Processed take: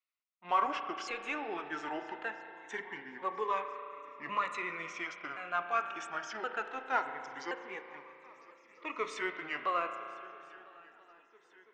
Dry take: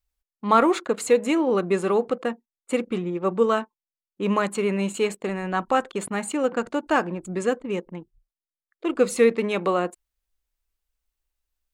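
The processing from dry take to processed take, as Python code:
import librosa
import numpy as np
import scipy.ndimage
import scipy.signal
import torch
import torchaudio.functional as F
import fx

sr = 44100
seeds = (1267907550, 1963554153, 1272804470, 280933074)

p1 = fx.pitch_ramps(x, sr, semitones=-6.0, every_ms=1073)
p2 = scipy.signal.sosfilt(scipy.signal.butter(2, 1300.0, 'highpass', fs=sr, output='sos'), p1)
p3 = 10.0 ** (-32.5 / 20.0) * np.tanh(p2 / 10.0 ** (-32.5 / 20.0))
p4 = p2 + (p3 * 10.0 ** (-4.5 / 20.0))
p5 = scipy.signal.sosfilt(scipy.signal.butter(2, 2300.0, 'lowpass', fs=sr, output='sos'), p4)
p6 = p5 + fx.echo_swing(p5, sr, ms=1336, ratio=3, feedback_pct=55, wet_db=-23.0, dry=0)
p7 = fx.rev_spring(p6, sr, rt60_s=2.9, pass_ms=(34,), chirp_ms=40, drr_db=7.5)
y = fx.notch_cascade(p7, sr, direction='rising', hz=0.22)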